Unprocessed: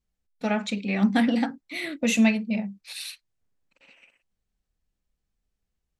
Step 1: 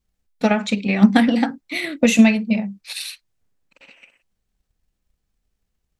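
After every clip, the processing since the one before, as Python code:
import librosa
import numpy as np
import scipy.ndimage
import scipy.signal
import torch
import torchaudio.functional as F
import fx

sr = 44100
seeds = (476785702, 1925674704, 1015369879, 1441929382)

y = fx.transient(x, sr, attack_db=7, sustain_db=2)
y = y * 10.0 ** (4.5 / 20.0)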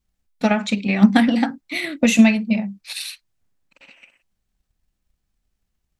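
y = fx.peak_eq(x, sr, hz=460.0, db=-5.0, octaves=0.37)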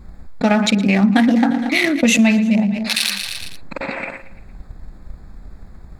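y = fx.wiener(x, sr, points=15)
y = fx.echo_feedback(y, sr, ms=115, feedback_pct=53, wet_db=-20.5)
y = fx.env_flatten(y, sr, amount_pct=70)
y = y * 10.0 ** (-3.5 / 20.0)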